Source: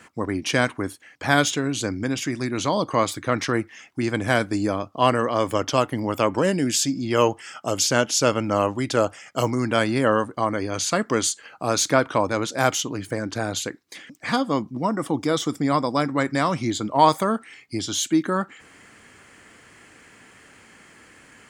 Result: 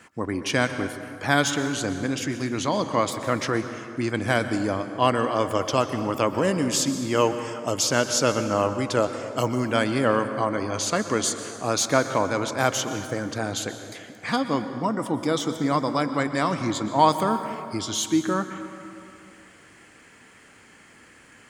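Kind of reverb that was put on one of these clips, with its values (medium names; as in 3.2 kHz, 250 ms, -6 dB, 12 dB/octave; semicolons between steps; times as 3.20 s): plate-style reverb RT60 2.4 s, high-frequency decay 0.55×, pre-delay 105 ms, DRR 9 dB; trim -2 dB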